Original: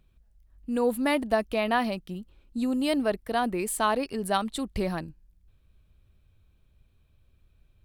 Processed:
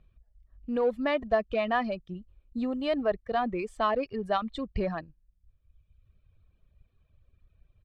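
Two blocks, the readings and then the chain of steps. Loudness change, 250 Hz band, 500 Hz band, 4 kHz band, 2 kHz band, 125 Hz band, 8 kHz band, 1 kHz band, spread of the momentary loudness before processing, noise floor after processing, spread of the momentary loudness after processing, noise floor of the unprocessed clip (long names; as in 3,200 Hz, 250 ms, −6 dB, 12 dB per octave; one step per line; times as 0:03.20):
−2.0 dB, −4.5 dB, 0.0 dB, −5.5 dB, −3.0 dB, −3.0 dB, below −25 dB, −2.0 dB, 11 LU, −70 dBFS, 11 LU, −64 dBFS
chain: reverb reduction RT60 1.3 s
high-shelf EQ 6,200 Hz −9 dB
comb filter 1.7 ms, depth 31%
in parallel at −9 dB: hard clipping −27.5 dBFS, distortion −6 dB
on the sum: high-frequency loss of the air 170 metres
level −2 dB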